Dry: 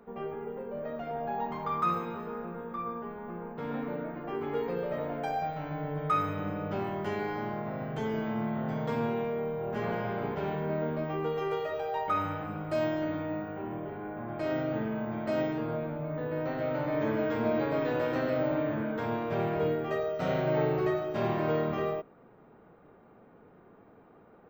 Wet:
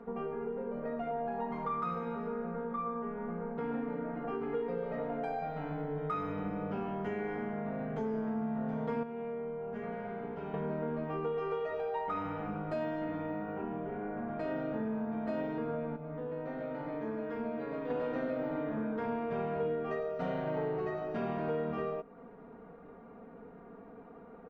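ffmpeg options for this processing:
-filter_complex "[0:a]asplit=5[a][b][c][d][e];[a]atrim=end=9.032[f];[b]atrim=start=9.028:end=10.542,asetpts=PTS-STARTPTS,volume=-10.5dB[g];[c]atrim=start=10.538:end=15.962[h];[d]atrim=start=15.958:end=17.902,asetpts=PTS-STARTPTS,volume=-8dB[i];[e]atrim=start=17.898[j];[f][g]acrossfade=d=0.004:c1=hsin:c2=hsin[k];[k][h]acrossfade=d=0.004:c1=hsin:c2=hsin[l];[l][i]acrossfade=d=0.004:c1=hsin:c2=hsin[m];[m][j]acrossfade=d=0.004:c1=hsin:c2=hsin,lowpass=f=1.6k:p=1,aecho=1:1:4.3:0.69,acompressor=threshold=-40dB:ratio=2.5,volume=3.5dB"

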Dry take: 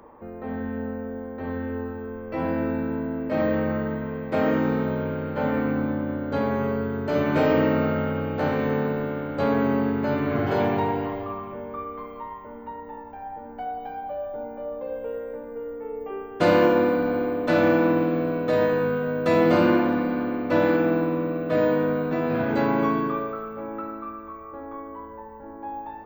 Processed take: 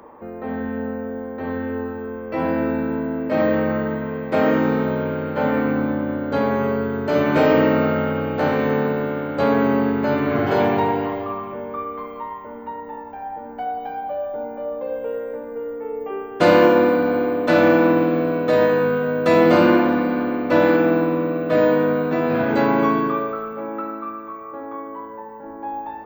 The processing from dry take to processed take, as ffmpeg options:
-filter_complex "[0:a]asettb=1/sr,asplit=3[a][b][c];[a]atrim=end=23.534[d];[b]atrim=start=23.53:end=25.45,asetpts=PTS-STARTPTS,afade=t=in:d=0.004:c=qsin,afade=t=out:st=1.916:d=0.004:c=qsin,highpass=110[e];[c]atrim=start=25.446[f];[d][e]acrossfade=d=0.004:c1=hsin:c2=qsin[g];[g][f]acrossfade=d=0.004:c1=qsin:c2=hsin,lowshelf=f=100:g=-10.5,volume=5.5dB"

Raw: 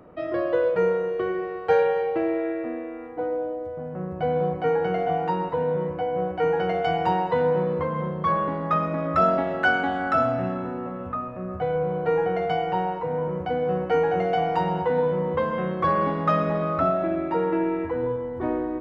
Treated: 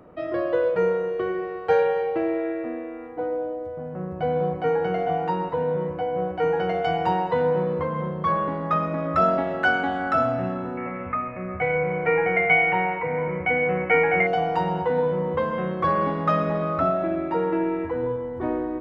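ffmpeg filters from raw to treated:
-filter_complex "[0:a]asettb=1/sr,asplit=3[a][b][c];[a]atrim=end=10.774[d];[b]atrim=start=10.77:end=14.27,asetpts=PTS-STARTPTS,afade=t=in:d=0.004:c=qsin,afade=t=out:st=3.496:d=0.004:c=qsin,lowpass=f=2.2k:t=q:w=16[e];[c]atrim=start=14.266[f];[d][e]acrossfade=d=0.004:c1=hsin:c2=qsin[g];[g][f]acrossfade=d=0.004:c1=qsin:c2=hsin"

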